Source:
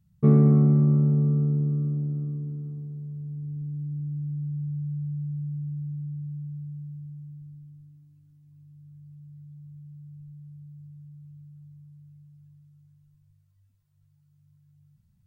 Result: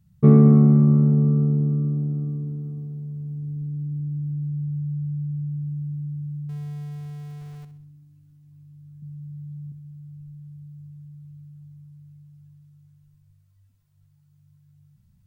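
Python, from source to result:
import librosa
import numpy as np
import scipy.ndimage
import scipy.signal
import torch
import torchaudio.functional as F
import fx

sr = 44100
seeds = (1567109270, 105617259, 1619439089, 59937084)

y = fx.zero_step(x, sr, step_db=-46.5, at=(6.49, 7.65))
y = fx.peak_eq(y, sr, hz=180.0, db=9.0, octaves=0.82, at=(9.02, 9.72))
y = fx.echo_feedback(y, sr, ms=64, feedback_pct=43, wet_db=-11.5)
y = y * librosa.db_to_amplitude(5.0)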